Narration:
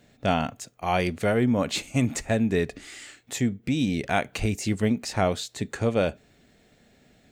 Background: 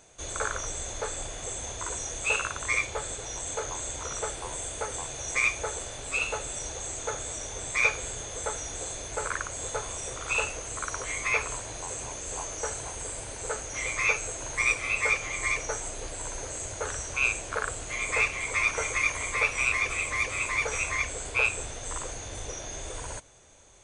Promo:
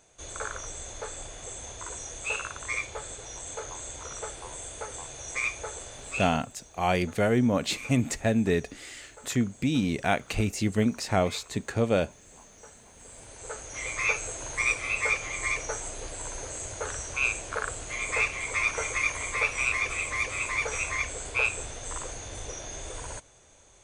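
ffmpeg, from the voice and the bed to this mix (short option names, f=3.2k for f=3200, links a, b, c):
-filter_complex "[0:a]adelay=5950,volume=-1dB[a];[1:a]volume=12dB,afade=t=out:st=6.22:d=0.22:silence=0.223872,afade=t=in:st=12.91:d=1.21:silence=0.149624[b];[a][b]amix=inputs=2:normalize=0"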